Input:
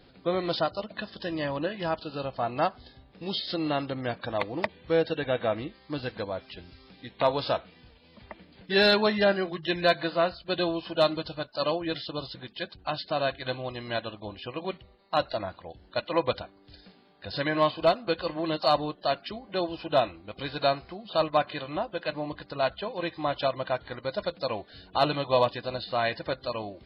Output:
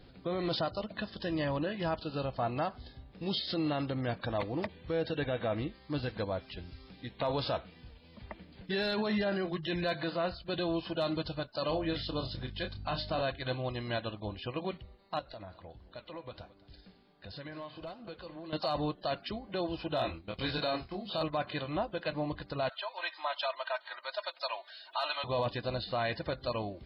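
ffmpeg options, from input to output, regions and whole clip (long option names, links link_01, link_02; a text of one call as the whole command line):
ffmpeg -i in.wav -filter_complex "[0:a]asettb=1/sr,asplit=3[link_01][link_02][link_03];[link_01]atrim=end=11.694[link_04];[link_02]atrim=start=11.69:end=13.23,asetpts=PTS-STARTPTS,afade=type=in:duration=0.004:curve=qsin,afade=type=out:start_time=1.536:duration=0.004:curve=qsin,bandreject=frequency=305.3:width_type=h:width=4,bandreject=frequency=610.6:width_type=h:width=4,bandreject=frequency=915.9:width_type=h:width=4,bandreject=frequency=1221.2:width_type=h:width=4,bandreject=frequency=1526.5:width_type=h:width=4,bandreject=frequency=1831.8:width_type=h:width=4,bandreject=frequency=2137.1:width_type=h:width=4,bandreject=frequency=2442.4:width_type=h:width=4,bandreject=frequency=2747.7:width_type=h:width=4,bandreject=frequency=3053:width_type=h:width=4,bandreject=frequency=3358.3:width_type=h:width=4,bandreject=frequency=3663.6:width_type=h:width=4,bandreject=frequency=3968.9:width_type=h:width=4,bandreject=frequency=4274.2:width_type=h:width=4,bandreject=frequency=4579.5:width_type=h:width=4,bandreject=frequency=4884.8:width_type=h:width=4,bandreject=frequency=5190.1:width_type=h:width=4,bandreject=frequency=5495.4:width_type=h:width=4,bandreject=frequency=5800.7:width_type=h:width=4,bandreject=frequency=6106:width_type=h:width=4,bandreject=frequency=6411.3:width_type=h:width=4,bandreject=frequency=6716.6:width_type=h:width=4,bandreject=frequency=7021.9:width_type=h:width=4,bandreject=frequency=7327.2:width_type=h:width=4,bandreject=frequency=7632.5:width_type=h:width=4,bandreject=frequency=7937.8:width_type=h:width=4,bandreject=frequency=8243.1:width_type=h:width=4,bandreject=frequency=8548.4:width_type=h:width=4,bandreject=frequency=8853.7:width_type=h:width=4,bandreject=frequency=9159:width_type=h:width=4,bandreject=frequency=9464.3:width_type=h:width=4,aeval=exprs='val(0)+0.00501*(sin(2*PI*50*n/s)+sin(2*PI*2*50*n/s)/2+sin(2*PI*3*50*n/s)/3+sin(2*PI*4*50*n/s)/4+sin(2*PI*5*50*n/s)/5)':channel_layout=same,asplit=2[link_05][link_06];[link_06]adelay=31,volume=-8dB[link_07];[link_05][link_07]amix=inputs=2:normalize=0,atrim=end_sample=67914[link_08];[link_03]atrim=start=13.226[link_09];[link_04][link_08]acrossfade=duration=0.004:curve1=hsin:curve2=qsin[link_10];[link_10][link_09]acrossfade=duration=0.004:curve1=qsin:curve2=hsin,asettb=1/sr,asplit=3[link_11][link_12][link_13];[link_11]atrim=end=15.194[link_14];[link_12]atrim=start=15.19:end=18.53,asetpts=PTS-STARTPTS,afade=type=in:duration=0.004:curve=qsin,afade=type=out:start_time=3.336:duration=0.004:curve=qsin,flanger=delay=4.3:depth=5.9:regen=-73:speed=1.4:shape=sinusoidal,acompressor=threshold=-43dB:ratio=3:attack=3.2:release=140:knee=1:detection=peak,aecho=1:1:216:0.126,atrim=end_sample=147294[link_15];[link_13]atrim=start=18.526[link_16];[link_14][link_15]acrossfade=duration=0.004:curve1=hsin:curve2=qsin[link_17];[link_17][link_16]acrossfade=duration=0.004:curve1=qsin:curve2=hsin,asettb=1/sr,asplit=3[link_18][link_19][link_20];[link_18]atrim=end=19.954[link_21];[link_19]atrim=start=19.95:end=21.23,asetpts=PTS-STARTPTS,afade=type=in:duration=0.004:curve=qsin,afade=type=out:start_time=1.276:duration=0.004:curve=qsin,agate=range=-9dB:threshold=-48dB:ratio=16:release=100:detection=peak,highshelf=frequency=3600:gain=6.5,asplit=2[link_22][link_23];[link_23]adelay=25,volume=-3.5dB[link_24];[link_22][link_24]amix=inputs=2:normalize=0,atrim=end_sample=56448[link_25];[link_20]atrim=start=21.226[link_26];[link_21][link_25]acrossfade=duration=0.004:curve1=hsin:curve2=qsin[link_27];[link_27][link_26]acrossfade=duration=0.004:curve1=qsin:curve2=hsin,asettb=1/sr,asplit=3[link_28][link_29][link_30];[link_28]atrim=end=22.694[link_31];[link_29]atrim=start=22.69:end=25.24,asetpts=PTS-STARTPTS,afade=type=in:duration=0.004:curve=qsin,afade=type=out:start_time=2.546:duration=0.004:curve=qsin,highpass=frequency=770:width=0.5412,highpass=frequency=770:width=1.3066,aecho=1:1:3.2:0.73,atrim=end_sample=112455,acompressor=mode=upward:threshold=-42dB:ratio=2.5:attack=3.2:release=140:knee=2.83:detection=peak[link_32];[link_30]atrim=start=25.236[link_33];[link_31][link_32]acrossfade=duration=0.004:curve1=hsin:curve2=qsin[link_34];[link_34][link_33]acrossfade=duration=0.004:curve1=qsin:curve2=hsin,lowshelf=frequency=150:gain=9,alimiter=limit=-21dB:level=0:latency=1:release=16,volume=-2.5dB" out.wav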